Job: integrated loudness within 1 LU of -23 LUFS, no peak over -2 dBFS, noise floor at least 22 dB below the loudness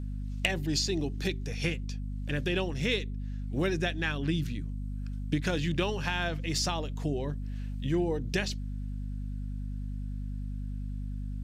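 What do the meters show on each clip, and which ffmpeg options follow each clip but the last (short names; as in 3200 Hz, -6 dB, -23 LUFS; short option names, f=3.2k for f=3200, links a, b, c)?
hum 50 Hz; harmonics up to 250 Hz; hum level -33 dBFS; loudness -32.5 LUFS; peak -14.5 dBFS; loudness target -23.0 LUFS
-> -af "bandreject=f=50:t=h:w=4,bandreject=f=100:t=h:w=4,bandreject=f=150:t=h:w=4,bandreject=f=200:t=h:w=4,bandreject=f=250:t=h:w=4"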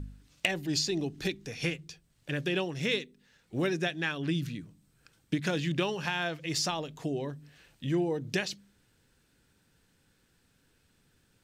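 hum none; loudness -32.5 LUFS; peak -14.5 dBFS; loudness target -23.0 LUFS
-> -af "volume=9.5dB"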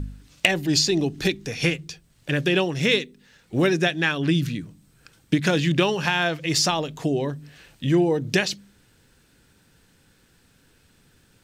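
loudness -23.0 LUFS; peak -5.0 dBFS; noise floor -60 dBFS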